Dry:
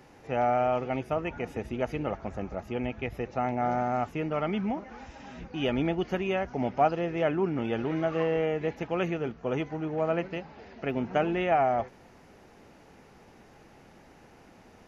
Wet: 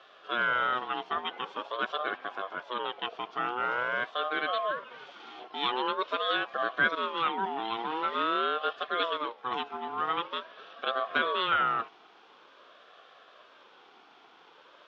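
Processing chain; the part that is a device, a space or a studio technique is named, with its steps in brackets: HPF 81 Hz; voice changer toy (ring modulator with a swept carrier 740 Hz, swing 25%, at 0.46 Hz; speaker cabinet 490–4700 Hz, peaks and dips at 910 Hz -4 dB, 2000 Hz -5 dB, 3400 Hz +8 dB); gain +4 dB

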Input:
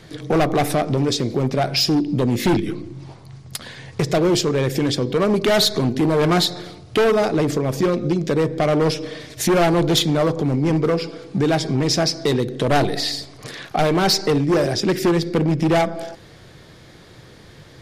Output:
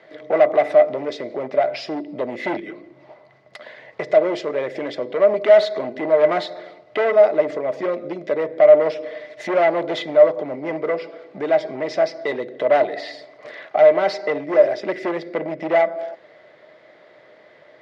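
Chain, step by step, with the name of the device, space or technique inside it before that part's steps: tin-can telephone (BPF 420–2400 Hz; small resonant body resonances 610/2000 Hz, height 17 dB, ringing for 60 ms); gain -3.5 dB

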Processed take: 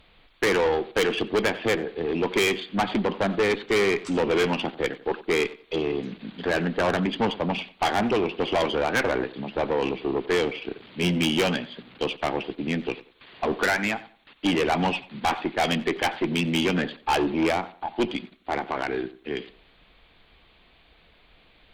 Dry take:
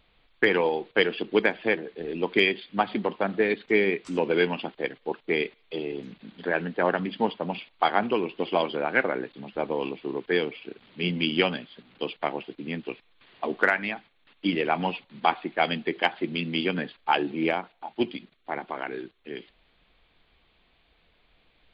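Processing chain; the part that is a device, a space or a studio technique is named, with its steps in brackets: rockabilly slapback (tube stage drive 26 dB, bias 0.25; tape echo 91 ms, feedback 28%, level -15 dB, low-pass 2000 Hz); gain +8 dB

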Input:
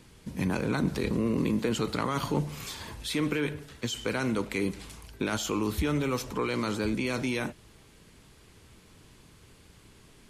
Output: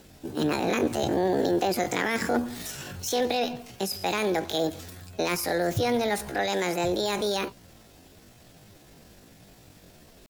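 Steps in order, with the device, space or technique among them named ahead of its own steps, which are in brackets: chipmunk voice (pitch shift +8.5 st); gain +3 dB

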